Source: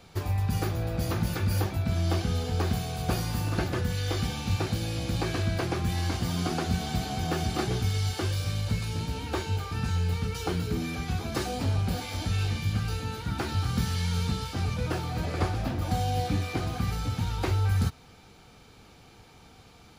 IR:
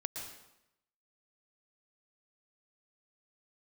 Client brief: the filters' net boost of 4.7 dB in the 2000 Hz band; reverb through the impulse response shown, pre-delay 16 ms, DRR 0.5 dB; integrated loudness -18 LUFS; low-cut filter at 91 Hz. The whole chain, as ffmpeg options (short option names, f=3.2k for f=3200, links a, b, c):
-filter_complex "[0:a]highpass=91,equalizer=f=2k:t=o:g=6,asplit=2[a][b];[1:a]atrim=start_sample=2205,adelay=16[c];[b][c]afir=irnorm=-1:irlink=0,volume=-1dB[d];[a][d]amix=inputs=2:normalize=0,volume=10dB"